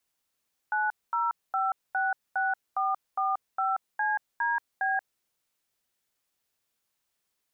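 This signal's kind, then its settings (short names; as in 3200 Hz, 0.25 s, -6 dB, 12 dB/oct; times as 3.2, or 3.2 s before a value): DTMF "90566445CDB", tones 0.182 s, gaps 0.227 s, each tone -27 dBFS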